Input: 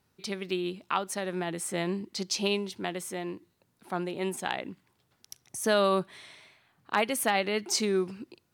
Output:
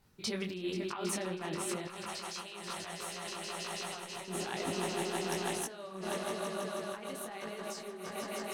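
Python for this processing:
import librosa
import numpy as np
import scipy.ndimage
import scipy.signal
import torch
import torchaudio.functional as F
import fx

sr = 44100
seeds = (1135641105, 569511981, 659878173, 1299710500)

y = fx.low_shelf(x, sr, hz=120.0, db=10.0)
y = fx.hum_notches(y, sr, base_hz=50, count=7)
y = fx.echo_swell(y, sr, ms=161, loudest=8, wet_db=-10)
y = fx.over_compress(y, sr, threshold_db=-35.0, ratio=-1.0)
y = fx.peak_eq(y, sr, hz=270.0, db=-14.0, octaves=1.6, at=(1.85, 4.28))
y = fx.detune_double(y, sr, cents=37)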